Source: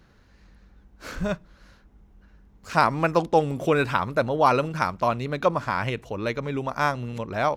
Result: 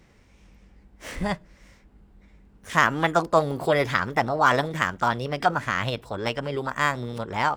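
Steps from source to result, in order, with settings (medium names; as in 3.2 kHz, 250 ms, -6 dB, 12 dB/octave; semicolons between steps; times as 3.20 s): formant shift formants +5 st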